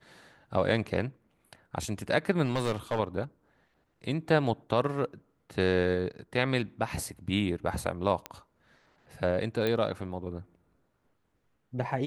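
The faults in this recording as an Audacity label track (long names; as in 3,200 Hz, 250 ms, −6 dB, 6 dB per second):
2.440000	3.000000	clipping −23.5 dBFS
8.260000	8.260000	click −19 dBFS
9.670000	9.670000	click −17 dBFS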